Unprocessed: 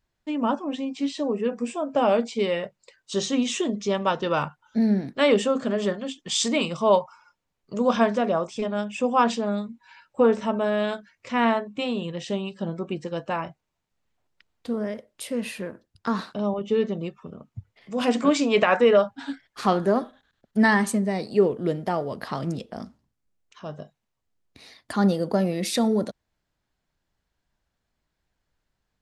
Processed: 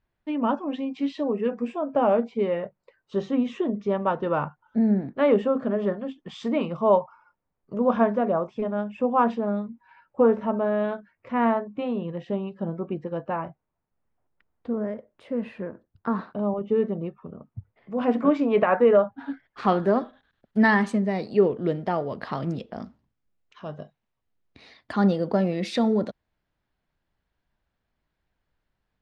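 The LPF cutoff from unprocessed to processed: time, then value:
1.45 s 2700 Hz
2.2 s 1400 Hz
19.24 s 1400 Hz
19.8 s 3500 Hz

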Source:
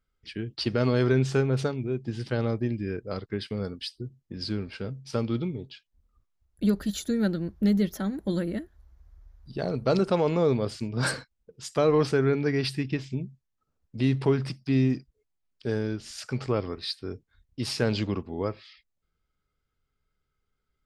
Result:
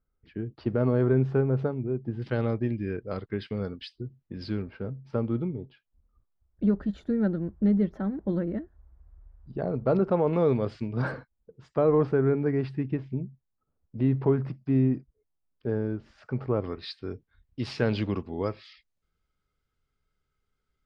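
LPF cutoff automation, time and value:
1100 Hz
from 2.22 s 2800 Hz
from 4.62 s 1300 Hz
from 10.33 s 2400 Hz
from 11.02 s 1200 Hz
from 16.64 s 3100 Hz
from 18.16 s 8100 Hz

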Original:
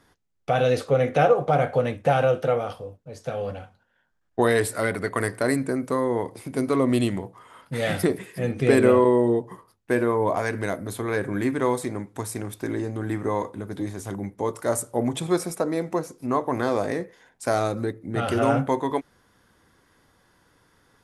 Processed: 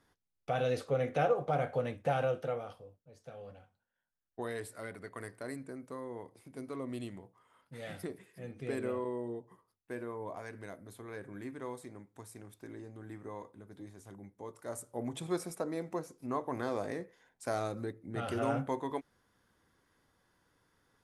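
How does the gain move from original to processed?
2.23 s -11 dB
3.2 s -19 dB
14.52 s -19 dB
15.26 s -11.5 dB

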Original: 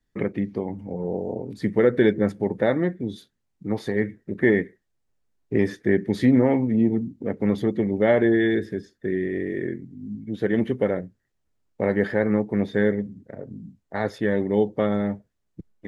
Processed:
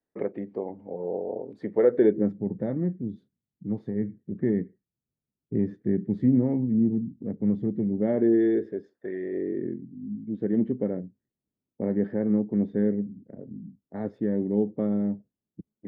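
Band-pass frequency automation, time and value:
band-pass, Q 1.3
1.9 s 570 Hz
2.43 s 170 Hz
7.85 s 170 Hz
9.15 s 800 Hz
9.65 s 230 Hz

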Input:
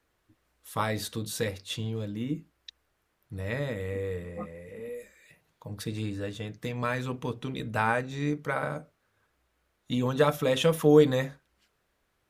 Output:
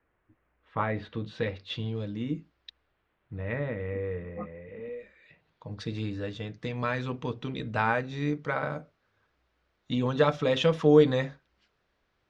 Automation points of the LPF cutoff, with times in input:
LPF 24 dB/oct
0.89 s 2400 Hz
2.26 s 5900 Hz
3.54 s 2600 Hz
4.5 s 2600 Hz
5.87 s 5400 Hz

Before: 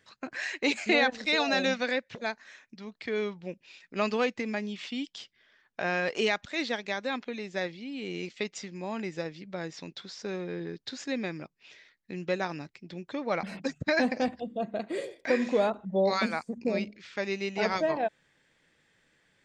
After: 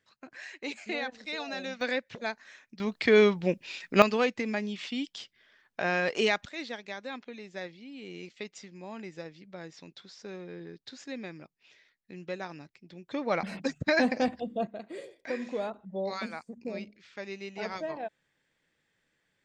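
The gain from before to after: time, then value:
-10 dB
from 1.81 s -1 dB
from 2.8 s +11 dB
from 4.02 s +1 dB
from 6.49 s -7 dB
from 13.11 s +1 dB
from 14.67 s -8 dB

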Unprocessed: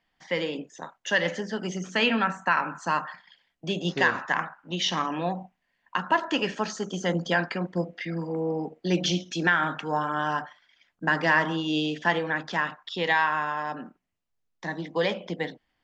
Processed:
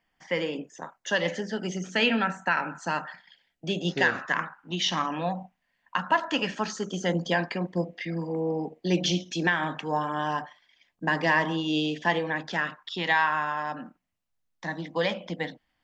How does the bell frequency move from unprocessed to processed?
bell -13 dB 0.22 oct
0.93 s 3900 Hz
1.37 s 1100 Hz
4.06 s 1100 Hz
5.11 s 370 Hz
6.44 s 370 Hz
7.18 s 1400 Hz
12.41 s 1400 Hz
13.14 s 400 Hz

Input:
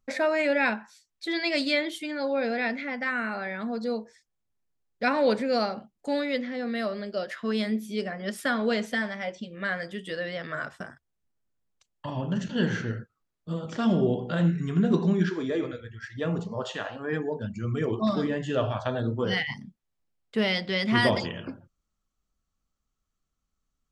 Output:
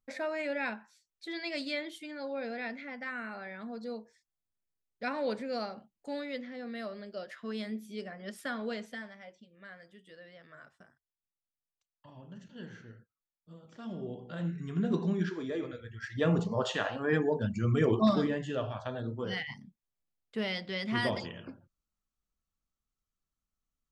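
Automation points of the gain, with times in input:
8.64 s -10 dB
9.47 s -20 dB
13.67 s -20 dB
14.86 s -7 dB
15.67 s -7 dB
16.2 s +1.5 dB
18.01 s +1.5 dB
18.64 s -8.5 dB

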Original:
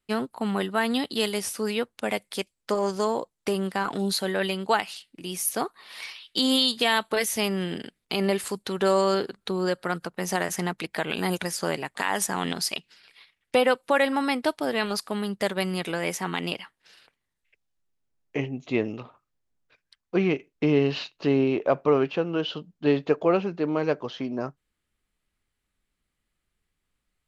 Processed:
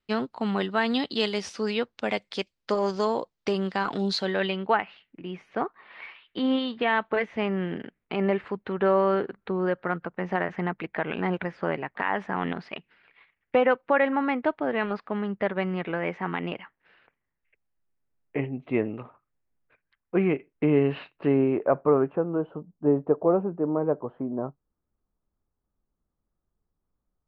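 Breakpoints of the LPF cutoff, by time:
LPF 24 dB/oct
4.2 s 5500 Hz
4.79 s 2300 Hz
21.25 s 2300 Hz
22.47 s 1100 Hz

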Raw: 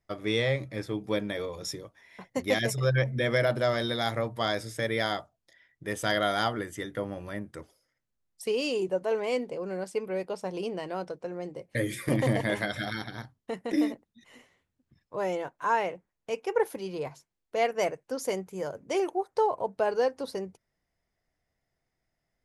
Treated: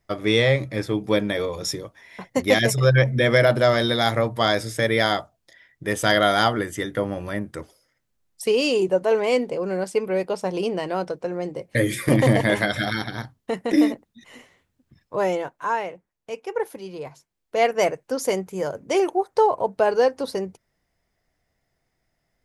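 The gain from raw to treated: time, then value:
15.21 s +8.5 dB
15.86 s 0 dB
17.04 s 0 dB
17.67 s +7.5 dB

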